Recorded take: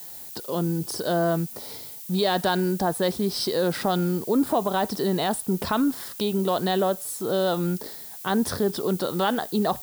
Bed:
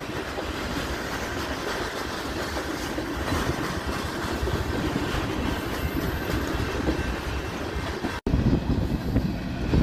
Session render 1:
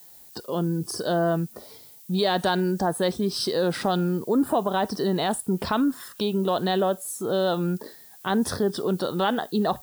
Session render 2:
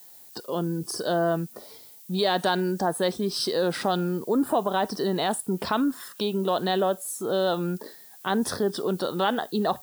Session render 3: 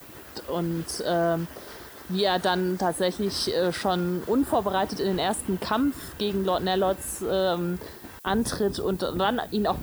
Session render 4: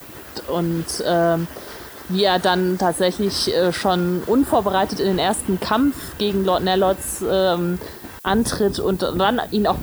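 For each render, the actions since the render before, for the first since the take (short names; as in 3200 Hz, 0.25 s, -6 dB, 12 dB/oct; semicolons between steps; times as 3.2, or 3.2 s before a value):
noise print and reduce 9 dB
HPF 200 Hz 6 dB/oct
add bed -15 dB
gain +6.5 dB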